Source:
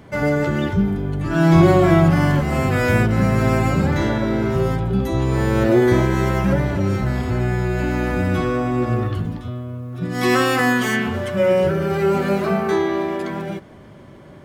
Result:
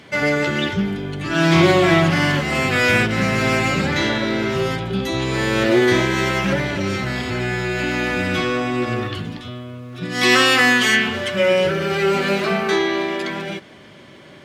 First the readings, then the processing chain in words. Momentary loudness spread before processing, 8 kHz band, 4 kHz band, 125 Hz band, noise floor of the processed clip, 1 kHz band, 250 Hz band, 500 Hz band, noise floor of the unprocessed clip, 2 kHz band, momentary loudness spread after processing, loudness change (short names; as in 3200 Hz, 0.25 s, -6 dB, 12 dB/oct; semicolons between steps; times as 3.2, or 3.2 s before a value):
9 LU, +6.0 dB, +11.0 dB, -5.0 dB, -43 dBFS, +0.5 dB, -2.0 dB, -0.5 dB, -42 dBFS, +6.5 dB, 12 LU, +0.5 dB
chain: weighting filter D; Doppler distortion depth 0.13 ms